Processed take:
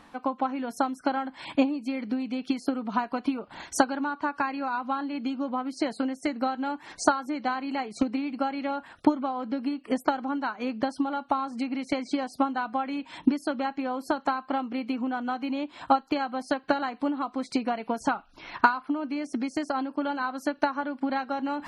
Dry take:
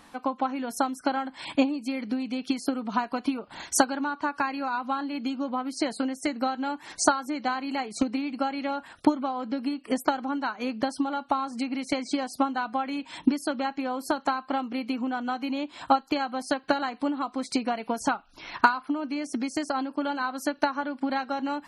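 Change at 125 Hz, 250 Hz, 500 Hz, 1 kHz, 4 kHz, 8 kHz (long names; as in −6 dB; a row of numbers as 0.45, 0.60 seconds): can't be measured, 0.0 dB, 0.0 dB, −0.5 dB, −4.0 dB, −7.5 dB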